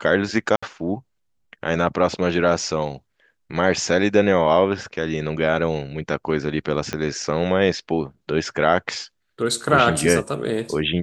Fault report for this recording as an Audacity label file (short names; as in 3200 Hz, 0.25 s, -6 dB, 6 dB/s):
0.560000	0.620000	gap 65 ms
6.930000	6.930000	pop -11 dBFS